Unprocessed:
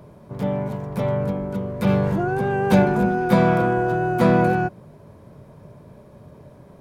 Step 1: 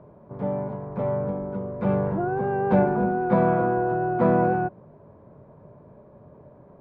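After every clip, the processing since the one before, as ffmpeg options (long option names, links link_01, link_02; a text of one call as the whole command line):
ffmpeg -i in.wav -af "lowpass=1100,lowshelf=frequency=270:gain=-7.5" out.wav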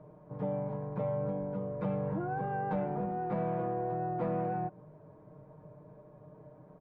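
ffmpeg -i in.wav -af "asoftclip=type=tanh:threshold=-11.5dB,acompressor=threshold=-25dB:ratio=6,aecho=1:1:6.5:0.8,volume=-7dB" out.wav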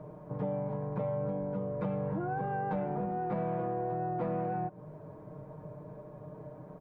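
ffmpeg -i in.wav -af "acompressor=threshold=-43dB:ratio=2,volume=7dB" out.wav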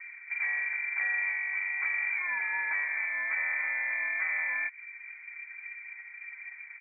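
ffmpeg -i in.wav -af "adynamicsmooth=sensitivity=1.5:basefreq=780,equalizer=frequency=100:width_type=o:width=0.67:gain=9,equalizer=frequency=630:width_type=o:width=0.67:gain=4,equalizer=frequency=1600:width_type=o:width=0.67:gain=11,lowpass=frequency=2100:width_type=q:width=0.5098,lowpass=frequency=2100:width_type=q:width=0.6013,lowpass=frequency=2100:width_type=q:width=0.9,lowpass=frequency=2100:width_type=q:width=2.563,afreqshift=-2500" out.wav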